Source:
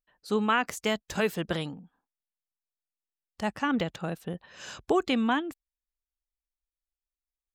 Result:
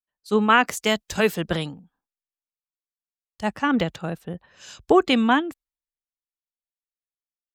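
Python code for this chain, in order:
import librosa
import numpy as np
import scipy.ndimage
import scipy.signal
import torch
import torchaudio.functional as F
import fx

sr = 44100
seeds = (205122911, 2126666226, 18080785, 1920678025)

y = fx.band_widen(x, sr, depth_pct=70)
y = y * 10.0 ** (6.0 / 20.0)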